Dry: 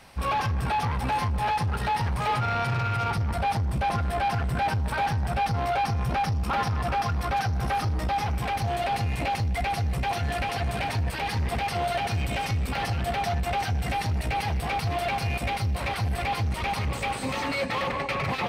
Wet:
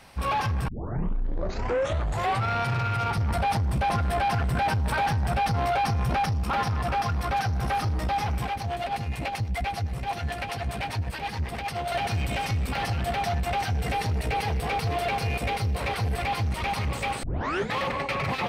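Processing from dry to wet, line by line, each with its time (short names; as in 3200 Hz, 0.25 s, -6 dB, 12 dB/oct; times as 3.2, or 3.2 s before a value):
0.68 tape start 1.81 s
3.17–6.26 fast leveller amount 50%
8.47–11.92 harmonic tremolo 9.5 Hz, crossover 410 Hz
13.76–16.16 bell 450 Hz +10 dB 0.23 oct
17.23 tape start 0.51 s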